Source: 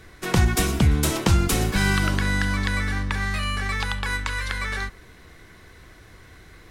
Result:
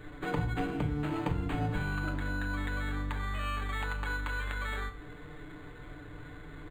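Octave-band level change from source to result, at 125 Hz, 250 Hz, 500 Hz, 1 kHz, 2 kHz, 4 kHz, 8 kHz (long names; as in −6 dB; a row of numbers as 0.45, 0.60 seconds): −11.5, −9.5, −9.0, −8.0, −10.5, −16.5, −25.5 decibels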